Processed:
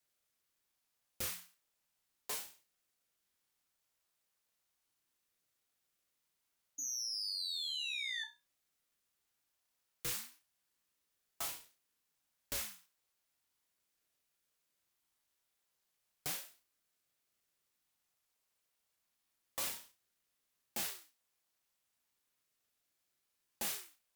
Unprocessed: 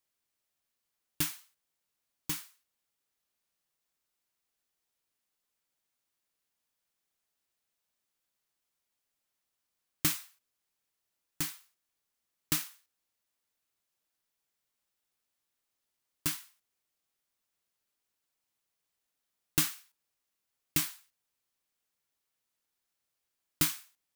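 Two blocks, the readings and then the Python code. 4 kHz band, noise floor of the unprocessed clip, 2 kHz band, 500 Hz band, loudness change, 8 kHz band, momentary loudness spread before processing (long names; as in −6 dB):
+0.5 dB, −85 dBFS, −3.0 dB, −0.5 dB, −7.0 dB, −5.0 dB, 15 LU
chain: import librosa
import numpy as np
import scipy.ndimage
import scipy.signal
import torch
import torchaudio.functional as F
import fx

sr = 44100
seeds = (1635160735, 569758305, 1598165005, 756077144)

y = scipy.signal.sosfilt(scipy.signal.butter(4, 170.0, 'highpass', fs=sr, output='sos'), x)
y = fx.spec_paint(y, sr, seeds[0], shape='fall', start_s=6.78, length_s=1.46, low_hz=2600.0, high_hz=6500.0, level_db=-40.0)
y = fx.tube_stage(y, sr, drive_db=37.0, bias=0.35)
y = fx.room_flutter(y, sr, wall_m=5.6, rt60_s=0.26)
y = fx.ring_lfo(y, sr, carrier_hz=580.0, swing_pct=70, hz=0.35)
y = y * librosa.db_to_amplitude(4.5)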